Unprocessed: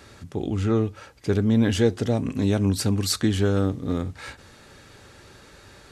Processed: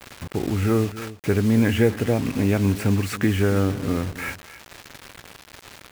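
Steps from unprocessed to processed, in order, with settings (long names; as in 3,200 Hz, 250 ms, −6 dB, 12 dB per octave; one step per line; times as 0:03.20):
high shelf with overshoot 3,200 Hz −10 dB, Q 3
in parallel at −1.5 dB: downward compressor 16 to 1, threshold −32 dBFS, peak gain reduction 19 dB
on the sum: bit reduction 6 bits
single-tap delay 276 ms −15 dB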